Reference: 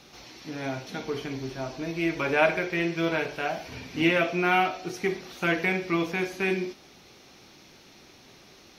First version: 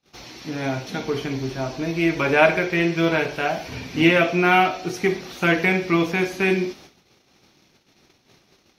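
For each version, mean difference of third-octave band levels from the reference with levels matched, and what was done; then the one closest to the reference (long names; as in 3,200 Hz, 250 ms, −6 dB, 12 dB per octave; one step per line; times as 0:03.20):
3.0 dB: noise gate −50 dBFS, range −33 dB
parametric band 130 Hz +2.5 dB 1.8 octaves
level +6 dB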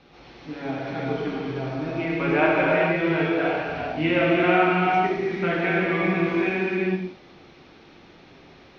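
7.5 dB: high-frequency loss of the air 300 metres
reverb whose tail is shaped and stops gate 480 ms flat, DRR −5 dB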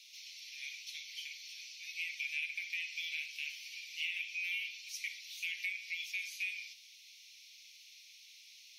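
21.5 dB: Butterworth high-pass 2,200 Hz 72 dB per octave
downward compressor 6 to 1, threshold −34 dBFS, peak gain reduction 9.5 dB
level −1 dB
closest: first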